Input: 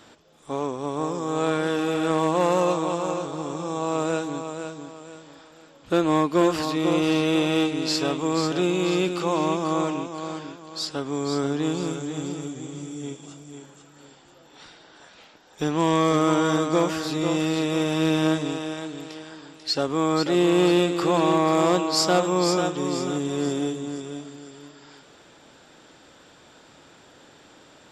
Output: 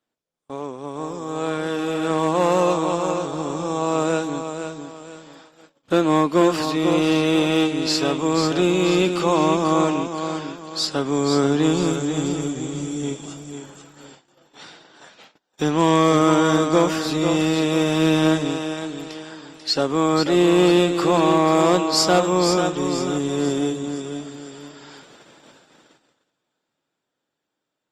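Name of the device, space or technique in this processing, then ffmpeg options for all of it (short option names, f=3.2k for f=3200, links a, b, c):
video call: -af "highpass=f=110:w=0.5412,highpass=f=110:w=1.3066,dynaudnorm=f=220:g=21:m=14.5dB,agate=range=-27dB:threshold=-42dB:ratio=16:detection=peak,volume=-3dB" -ar 48000 -c:a libopus -b:a 32k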